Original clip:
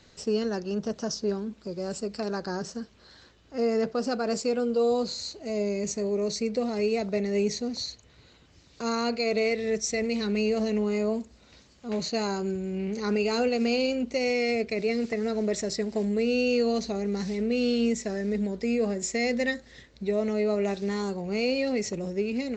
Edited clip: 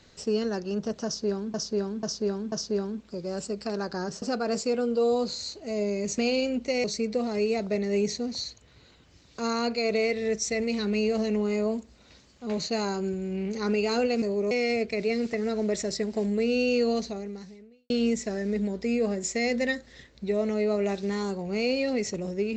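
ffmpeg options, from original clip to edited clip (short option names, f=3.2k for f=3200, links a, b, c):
-filter_complex "[0:a]asplit=10[a][b][c][d][e][f][g][h][i][j];[a]atrim=end=1.542[k];[b]atrim=start=1.048:end=1.542[l];[c]atrim=start=1.048:end=1.542[m];[d]atrim=start=1.048:end=2.752[n];[e]atrim=start=4.008:end=5.972[o];[f]atrim=start=13.638:end=14.302[p];[g]atrim=start=6.258:end=13.642[q];[h]atrim=start=5.968:end=6.262[r];[i]atrim=start=14.298:end=17.69,asetpts=PTS-STARTPTS,afade=t=out:st=2.432:d=0.96:c=qua[s];[j]atrim=start=17.69,asetpts=PTS-STARTPTS,afade=t=in:d=0.004:c=hsin[t];[k][l]acrossfade=d=0.004:c1=hsin:c2=hsin[u];[u][m]acrossfade=d=0.004:c1=hsin:c2=hsin[v];[v][n]acrossfade=d=0.004:c1=hsin:c2=hsin[w];[w][o]acrossfade=d=0.004:c1=hsin:c2=hsin[x];[x][p]acrossfade=d=0.004:c1=hsin:c2=hsin[y];[y][q]acrossfade=d=0.004:c1=hsin:c2=hsin[z];[z][r]acrossfade=d=0.004:c1=hsin:c2=hsin[aa];[s][t]concat=n=2:v=0:a=1[ab];[aa][ab]acrossfade=d=0.004:c1=hsin:c2=hsin"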